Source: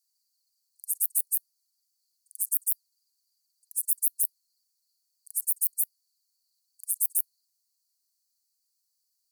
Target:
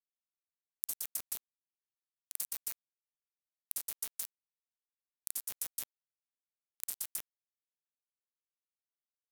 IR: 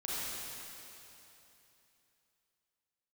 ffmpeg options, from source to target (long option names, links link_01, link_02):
-af "equalizer=frequency=13000:width=0.81:gain=11,alimiter=limit=-21.5dB:level=0:latency=1:release=100,aecho=1:1:120:0.251,acrusher=bits=3:mix=0:aa=0.5,acompressor=threshold=-47dB:ratio=5,volume=12.5dB"